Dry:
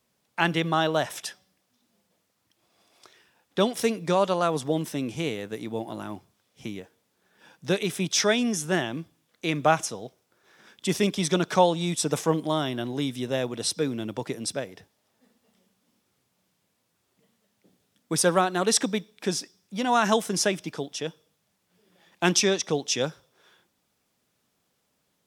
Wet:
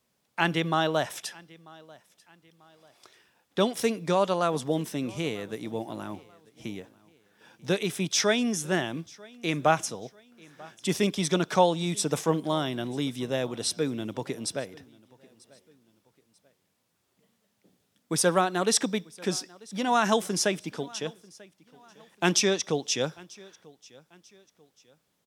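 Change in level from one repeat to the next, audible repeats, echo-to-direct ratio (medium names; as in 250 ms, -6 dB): -8.5 dB, 2, -23.5 dB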